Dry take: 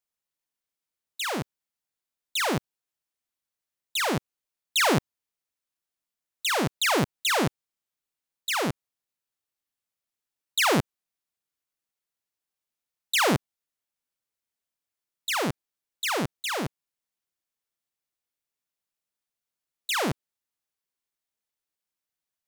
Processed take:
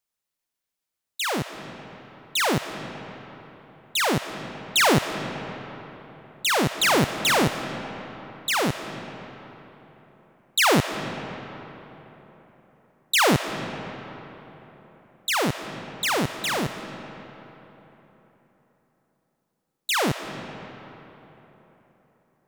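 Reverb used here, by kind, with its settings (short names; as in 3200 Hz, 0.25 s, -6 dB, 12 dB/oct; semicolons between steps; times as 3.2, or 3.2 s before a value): digital reverb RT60 3.9 s, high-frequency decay 0.6×, pre-delay 0.105 s, DRR 9.5 dB; gain +3.5 dB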